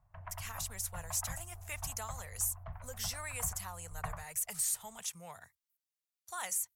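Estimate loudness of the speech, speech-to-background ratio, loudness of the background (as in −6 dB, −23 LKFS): −38.0 LKFS, 10.0 dB, −48.0 LKFS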